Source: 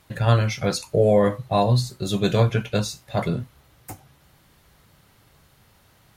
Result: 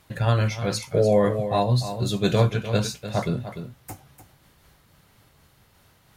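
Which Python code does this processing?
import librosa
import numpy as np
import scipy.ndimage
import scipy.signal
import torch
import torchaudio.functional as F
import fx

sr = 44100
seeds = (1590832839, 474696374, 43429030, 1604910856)

p1 = x + fx.echo_single(x, sr, ms=298, db=-10.5, dry=0)
p2 = fx.am_noise(p1, sr, seeds[0], hz=5.7, depth_pct=55)
y = p2 * librosa.db_to_amplitude(1.0)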